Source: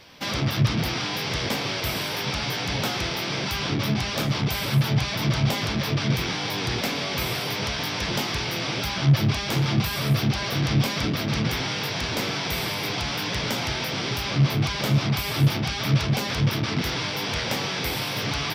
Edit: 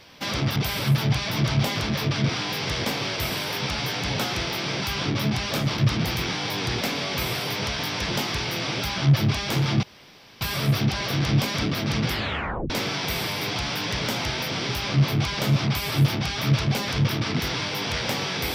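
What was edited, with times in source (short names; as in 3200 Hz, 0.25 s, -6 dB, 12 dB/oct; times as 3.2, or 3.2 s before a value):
0.56–0.93 swap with 4.42–6.15
9.83 insert room tone 0.58 s
11.52 tape stop 0.60 s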